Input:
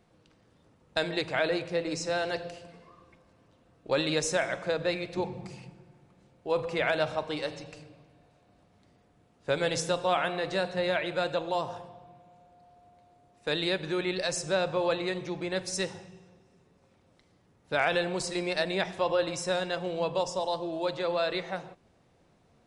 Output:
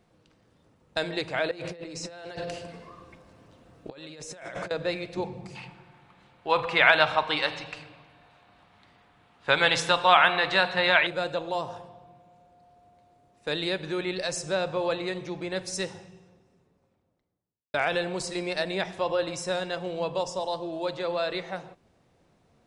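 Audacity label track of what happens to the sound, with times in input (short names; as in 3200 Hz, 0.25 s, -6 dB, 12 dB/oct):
1.510000	4.710000	negative-ratio compressor -40 dBFS
5.550000	11.070000	band shelf 1800 Hz +12 dB 2.7 oct
16.040000	17.740000	studio fade out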